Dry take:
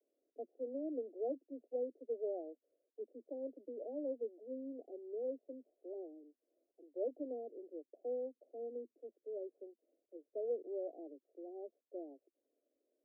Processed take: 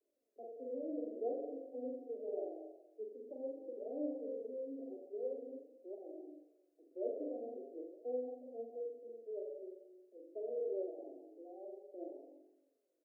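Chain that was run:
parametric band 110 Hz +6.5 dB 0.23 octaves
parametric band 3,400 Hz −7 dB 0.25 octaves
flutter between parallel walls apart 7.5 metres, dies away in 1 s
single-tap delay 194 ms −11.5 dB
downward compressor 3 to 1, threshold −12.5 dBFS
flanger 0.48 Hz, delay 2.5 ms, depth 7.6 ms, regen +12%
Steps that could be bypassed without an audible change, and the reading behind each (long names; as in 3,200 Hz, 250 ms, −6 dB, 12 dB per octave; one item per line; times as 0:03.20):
parametric band 110 Hz: nothing at its input below 230 Hz
parametric band 3,400 Hz: nothing at its input above 760 Hz
downward compressor, threshold −12.5 dBFS: peak of its input −25.0 dBFS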